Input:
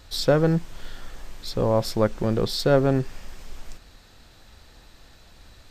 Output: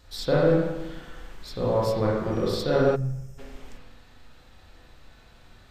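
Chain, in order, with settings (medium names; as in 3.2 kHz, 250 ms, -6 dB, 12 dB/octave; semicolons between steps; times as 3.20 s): 2.31–2.94 s: whistle 5.7 kHz -50 dBFS; spring tank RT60 1.1 s, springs 34/38/46 ms, chirp 60 ms, DRR -5.5 dB; 2.96–3.38 s: time-frequency box 210–5000 Hz -19 dB; trim -7.5 dB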